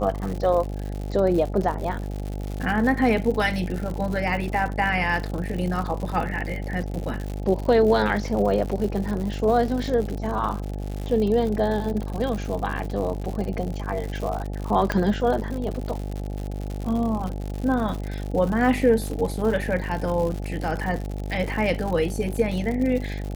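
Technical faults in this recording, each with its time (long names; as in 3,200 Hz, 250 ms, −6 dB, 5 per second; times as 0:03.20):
mains buzz 50 Hz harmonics 17 −30 dBFS
surface crackle 120 per second −29 dBFS
0:14.92: click −10 dBFS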